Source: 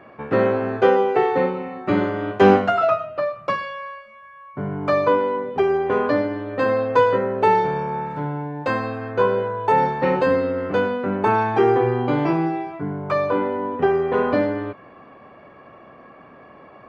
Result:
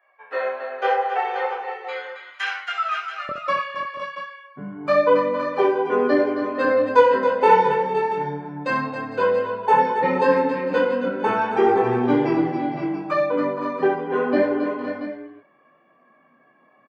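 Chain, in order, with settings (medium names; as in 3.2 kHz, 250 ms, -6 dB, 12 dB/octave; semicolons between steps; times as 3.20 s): expander on every frequency bin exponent 1.5; high-pass 630 Hz 24 dB/octave, from 1.65 s 1.4 kHz, from 3.29 s 160 Hz; chorus 0.75 Hz, delay 16.5 ms, depth 7.8 ms; multi-tap echo 65/273/455/514/535/682 ms -8/-8.5/-16/-10/-12/-11.5 dB; trim +5 dB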